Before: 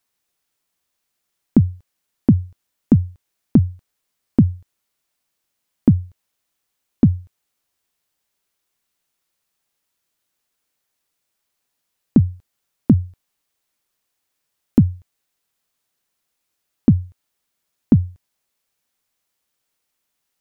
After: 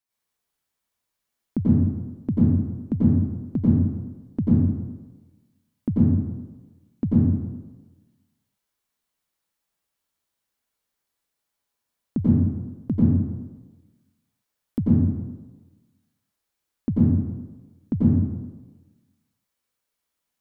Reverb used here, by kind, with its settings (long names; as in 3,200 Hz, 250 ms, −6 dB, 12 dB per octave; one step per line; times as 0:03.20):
dense smooth reverb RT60 1.2 s, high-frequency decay 0.55×, pre-delay 80 ms, DRR −8.5 dB
level −13 dB